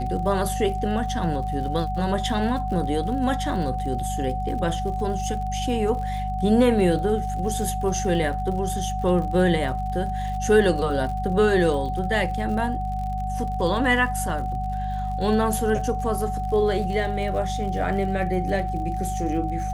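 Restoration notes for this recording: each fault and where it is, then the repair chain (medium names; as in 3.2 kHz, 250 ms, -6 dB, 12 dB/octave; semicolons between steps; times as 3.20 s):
crackle 59 per s -33 dBFS
hum 50 Hz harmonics 4 -29 dBFS
whine 750 Hz -28 dBFS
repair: de-click; de-hum 50 Hz, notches 4; band-stop 750 Hz, Q 30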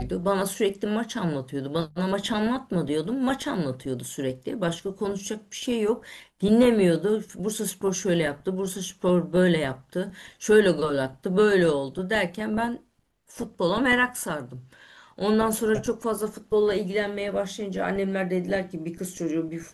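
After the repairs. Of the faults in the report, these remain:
nothing left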